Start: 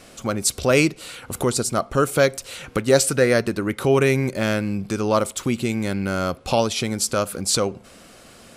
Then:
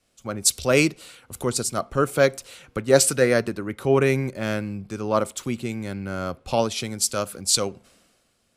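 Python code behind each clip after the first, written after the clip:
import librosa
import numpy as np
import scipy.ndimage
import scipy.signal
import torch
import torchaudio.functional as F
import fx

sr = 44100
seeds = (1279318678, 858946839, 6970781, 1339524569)

y = fx.band_widen(x, sr, depth_pct=70)
y = y * 10.0 ** (-3.5 / 20.0)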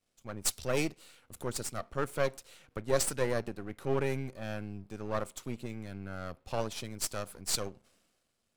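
y = np.where(x < 0.0, 10.0 ** (-12.0 / 20.0) * x, x)
y = y * 10.0 ** (-8.5 / 20.0)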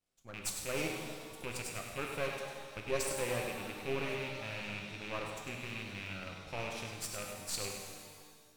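y = fx.rattle_buzz(x, sr, strikes_db=-38.0, level_db=-24.0)
y = y + 10.0 ** (-8.0 / 20.0) * np.pad(y, (int(100 * sr / 1000.0), 0))[:len(y)]
y = fx.rev_shimmer(y, sr, seeds[0], rt60_s=1.8, semitones=7, shimmer_db=-8, drr_db=1.5)
y = y * 10.0 ** (-8.0 / 20.0)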